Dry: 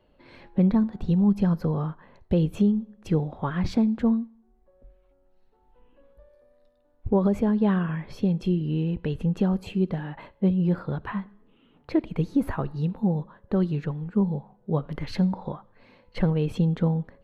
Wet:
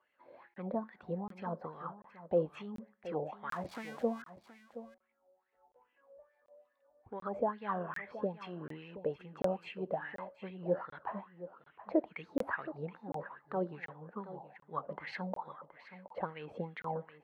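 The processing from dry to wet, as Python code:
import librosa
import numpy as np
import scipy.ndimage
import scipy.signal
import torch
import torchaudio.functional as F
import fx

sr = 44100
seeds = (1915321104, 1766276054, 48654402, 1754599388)

p1 = fx.crossing_spikes(x, sr, level_db=-20.5, at=(3.52, 4.22))
p2 = scipy.signal.sosfilt(scipy.signal.butter(2, 41.0, 'highpass', fs=sr, output='sos'), p1)
p3 = fx.rider(p2, sr, range_db=3, speed_s=2.0)
p4 = p2 + (p3 * librosa.db_to_amplitude(2.5))
p5 = fx.wah_lfo(p4, sr, hz=2.4, low_hz=550.0, high_hz=2100.0, q=5.6)
p6 = p5 + 10.0 ** (-14.0 / 20.0) * np.pad(p5, (int(723 * sr / 1000.0), 0))[:len(p5)]
p7 = fx.buffer_crackle(p6, sr, first_s=0.54, period_s=0.74, block=1024, kind='zero')
y = p7 * librosa.db_to_amplitude(-1.0)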